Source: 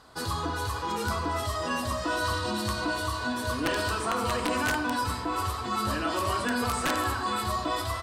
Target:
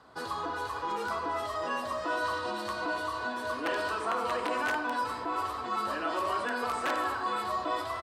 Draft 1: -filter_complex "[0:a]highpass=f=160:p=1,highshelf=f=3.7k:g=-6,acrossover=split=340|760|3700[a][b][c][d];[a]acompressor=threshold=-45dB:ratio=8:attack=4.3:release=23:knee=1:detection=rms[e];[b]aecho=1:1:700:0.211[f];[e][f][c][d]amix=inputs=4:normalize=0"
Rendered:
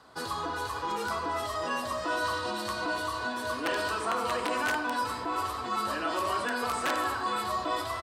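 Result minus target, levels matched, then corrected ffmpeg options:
8000 Hz band +5.5 dB; compressor: peak gain reduction -5 dB
-filter_complex "[0:a]highpass=f=160:p=1,highshelf=f=3.7k:g=-14.5,acrossover=split=340|760|3700[a][b][c][d];[a]acompressor=threshold=-51dB:ratio=8:attack=4.3:release=23:knee=1:detection=rms[e];[b]aecho=1:1:700:0.211[f];[e][f][c][d]amix=inputs=4:normalize=0"

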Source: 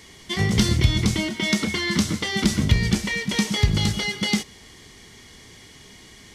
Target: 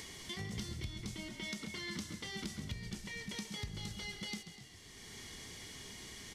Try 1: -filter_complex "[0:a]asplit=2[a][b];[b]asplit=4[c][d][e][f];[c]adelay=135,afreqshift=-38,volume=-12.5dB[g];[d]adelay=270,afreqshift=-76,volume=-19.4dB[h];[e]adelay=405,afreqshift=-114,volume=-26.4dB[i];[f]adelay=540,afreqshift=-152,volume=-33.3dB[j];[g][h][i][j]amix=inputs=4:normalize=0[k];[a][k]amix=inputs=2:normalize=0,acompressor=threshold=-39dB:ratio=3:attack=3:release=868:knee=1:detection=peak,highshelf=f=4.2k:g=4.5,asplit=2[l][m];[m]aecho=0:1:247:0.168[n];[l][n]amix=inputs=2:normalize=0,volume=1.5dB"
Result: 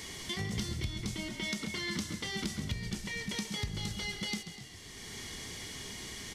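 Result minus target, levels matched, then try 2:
compressor: peak gain reduction -6.5 dB
-filter_complex "[0:a]asplit=2[a][b];[b]asplit=4[c][d][e][f];[c]adelay=135,afreqshift=-38,volume=-12.5dB[g];[d]adelay=270,afreqshift=-76,volume=-19.4dB[h];[e]adelay=405,afreqshift=-114,volume=-26.4dB[i];[f]adelay=540,afreqshift=-152,volume=-33.3dB[j];[g][h][i][j]amix=inputs=4:normalize=0[k];[a][k]amix=inputs=2:normalize=0,acompressor=threshold=-48.5dB:ratio=3:attack=3:release=868:knee=1:detection=peak,highshelf=f=4.2k:g=4.5,asplit=2[l][m];[m]aecho=0:1:247:0.168[n];[l][n]amix=inputs=2:normalize=0,volume=1.5dB"

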